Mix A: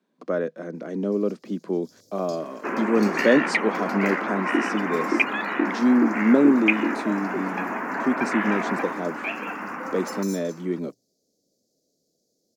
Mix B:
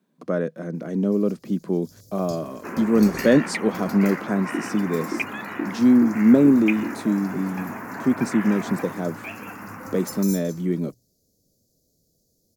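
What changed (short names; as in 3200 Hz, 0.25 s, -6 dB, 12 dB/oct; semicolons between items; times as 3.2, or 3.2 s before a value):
second sound -6.5 dB; master: remove three-band isolator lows -23 dB, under 210 Hz, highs -13 dB, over 7100 Hz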